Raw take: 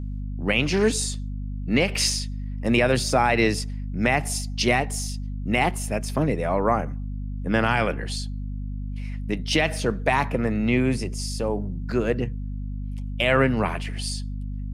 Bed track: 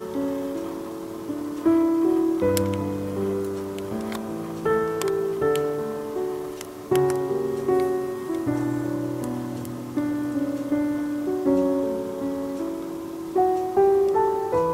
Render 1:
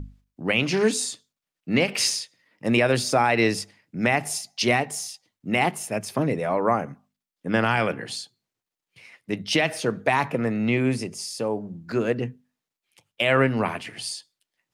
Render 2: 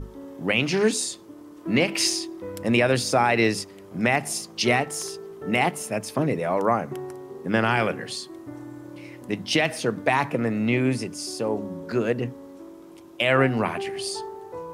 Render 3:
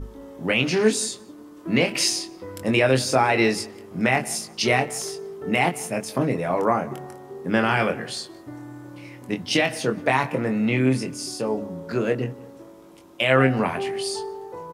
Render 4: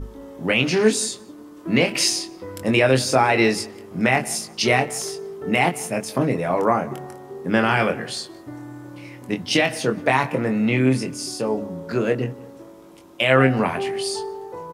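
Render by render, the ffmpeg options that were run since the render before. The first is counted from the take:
-af "bandreject=f=50:t=h:w=6,bandreject=f=100:t=h:w=6,bandreject=f=150:t=h:w=6,bandreject=f=200:t=h:w=6,bandreject=f=250:t=h:w=6"
-filter_complex "[1:a]volume=0.2[s0];[0:a][s0]amix=inputs=2:normalize=0"
-filter_complex "[0:a]asplit=2[s0][s1];[s1]adelay=23,volume=0.501[s2];[s0][s2]amix=inputs=2:normalize=0,asplit=2[s3][s4];[s4]adelay=178,lowpass=f=2300:p=1,volume=0.1,asplit=2[s5][s6];[s6]adelay=178,lowpass=f=2300:p=1,volume=0.37,asplit=2[s7][s8];[s8]adelay=178,lowpass=f=2300:p=1,volume=0.37[s9];[s3][s5][s7][s9]amix=inputs=4:normalize=0"
-af "volume=1.26"

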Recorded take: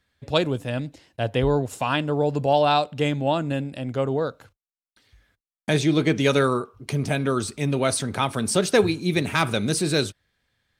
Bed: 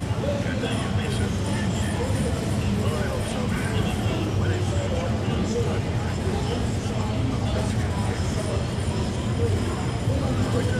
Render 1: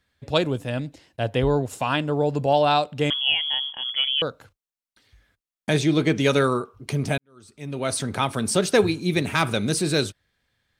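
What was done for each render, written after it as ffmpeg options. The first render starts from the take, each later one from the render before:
-filter_complex "[0:a]asettb=1/sr,asplit=3[s0][s1][s2];[s0]atrim=end=3.104[s3];[s1]atrim=start=3.1:end=4.22,asetpts=PTS-STARTPTS,afade=t=in:d=0.004:c=qsin,afade=t=out:st=1.116:d=0.004:c=qsin,lowpass=f=3000:t=q:w=0.5098,lowpass=f=3000:t=q:w=0.6013,lowpass=f=3000:t=q:w=0.9,lowpass=f=3000:t=q:w=2.563,afreqshift=-3500[s4];[s2]atrim=start=4.216[s5];[s3][s4]acrossfade=d=0.004:c1=hsin:c2=qsin[s6];[s6][s5]acrossfade=d=0.004:c1=qsin:c2=hsin,asplit=2[s7][s8];[s7]atrim=end=7.18,asetpts=PTS-STARTPTS,afade=t=out:st=7.176:d=0.004:c=hsin[s9];[s8]atrim=start=7.18,asetpts=PTS-STARTPTS,afade=t=in:d=0.85:c=qua[s10];[s9][s10]concat=n=2:v=0:a=1"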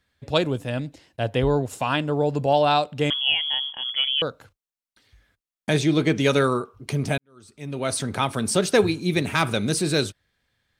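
-af anull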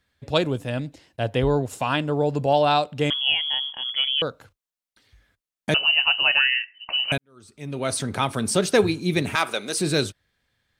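-filter_complex "[0:a]asettb=1/sr,asplit=3[s0][s1][s2];[s0]atrim=end=5.744[s3];[s1]atrim=start=5.74:end=7.12,asetpts=PTS-STARTPTS,afade=t=in:d=0.004:c=qsin,afade=t=out:st=1.376:d=0.004:c=qsin,lowpass=f=2600:t=q:w=0.5098,lowpass=f=2600:t=q:w=0.6013,lowpass=f=2600:t=q:w=0.9,lowpass=f=2600:t=q:w=2.563,afreqshift=-3100[s4];[s2]atrim=start=7.116[s5];[s3][s4]acrossfade=d=0.004:c1=hsin:c2=qsin[s6];[s6][s5]acrossfade=d=0.004:c1=qsin:c2=hsin,asettb=1/sr,asplit=3[s7][s8][s9];[s7]atrim=end=9.354[s10];[s8]atrim=start=9.35:end=9.8,asetpts=PTS-STARTPTS,afade=t=in:d=0.004:c=qsin,afade=t=out:st=0.446:d=0.004:c=qsin,highpass=470[s11];[s9]atrim=start=9.796[s12];[s10][s11]acrossfade=d=0.004:c1=hsin:c2=qsin[s13];[s13][s12]acrossfade=d=0.004:c1=qsin:c2=hsin"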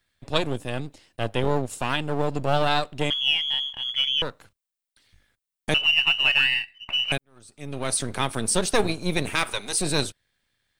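-filter_complex "[0:a]acrossover=split=1800[s0][s1];[s0]aeval=exprs='max(val(0),0)':c=same[s2];[s2][s1]amix=inputs=2:normalize=0,aexciter=amount=1.1:drive=6.1:freq=8400"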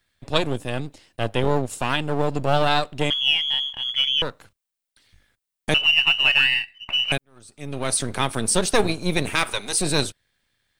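-af "volume=1.33"

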